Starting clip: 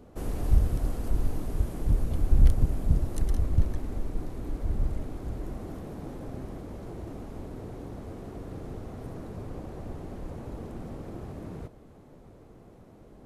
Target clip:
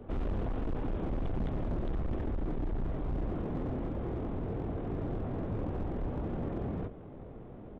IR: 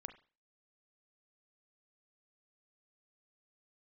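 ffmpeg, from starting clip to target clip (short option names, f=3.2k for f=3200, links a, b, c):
-filter_complex "[0:a]highshelf=f=2.1k:g=-7.5,asplit=2[a][b];[b]adelay=153,lowpass=f=990:p=1,volume=-16dB,asplit=2[c][d];[d]adelay=153,lowpass=f=990:p=1,volume=0.38,asplit=2[e][f];[f]adelay=153,lowpass=f=990:p=1,volume=0.38[g];[c][e][g]amix=inputs=3:normalize=0[h];[a][h]amix=inputs=2:normalize=0,aresample=8000,aresample=44100,asplit=2[i][j];[j]adelay=29,volume=-8.5dB[k];[i][k]amix=inputs=2:normalize=0,acrossover=split=160[l][m];[l]acompressor=threshold=-29dB:ratio=16[n];[n][m]amix=inputs=2:normalize=0,atempo=1.7,asoftclip=type=hard:threshold=-34.5dB,volume=5dB"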